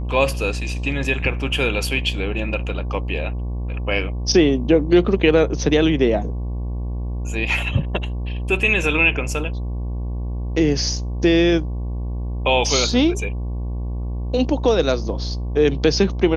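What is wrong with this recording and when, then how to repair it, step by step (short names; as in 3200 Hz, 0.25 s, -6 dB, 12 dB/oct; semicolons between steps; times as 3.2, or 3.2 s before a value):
buzz 60 Hz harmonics 19 -25 dBFS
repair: de-hum 60 Hz, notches 19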